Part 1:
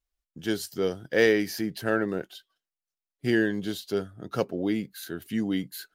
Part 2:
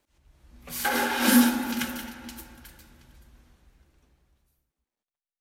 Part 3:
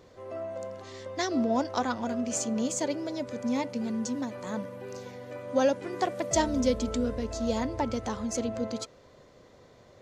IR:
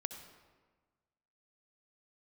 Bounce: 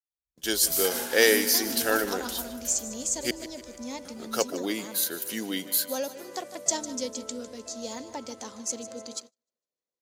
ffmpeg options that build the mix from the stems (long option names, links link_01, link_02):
-filter_complex "[0:a]highpass=450,volume=2dB,asplit=3[link_01][link_02][link_03];[link_01]atrim=end=3.31,asetpts=PTS-STARTPTS,afade=type=out:start_time=3.306:duration=0.004:curve=hsin[link_04];[link_02]atrim=start=3.31:end=4.05,asetpts=PTS-STARTPTS,volume=0[link_05];[link_03]atrim=start=4.05,asetpts=PTS-STARTPTS,afade=type=in:duration=0.004:curve=hsin[link_06];[link_04][link_05][link_06]concat=n=3:v=0:a=1,asplit=2[link_07][link_08];[link_08]volume=-15dB[link_09];[1:a]dynaudnorm=framelen=200:gausssize=3:maxgain=12dB,acompressor=threshold=-20dB:ratio=2.5,volume=-16.5dB[link_10];[2:a]highpass=280,adelay=350,volume=-7.5dB,asplit=2[link_11][link_12];[link_12]volume=-14dB[link_13];[link_09][link_13]amix=inputs=2:normalize=0,aecho=0:1:152|304|456|608|760|912|1064:1|0.47|0.221|0.104|0.0488|0.0229|0.0108[link_14];[link_07][link_10][link_11][link_14]amix=inputs=4:normalize=0,agate=range=-35dB:threshold=-50dB:ratio=16:detection=peak,bass=frequency=250:gain=4,treble=frequency=4000:gain=15"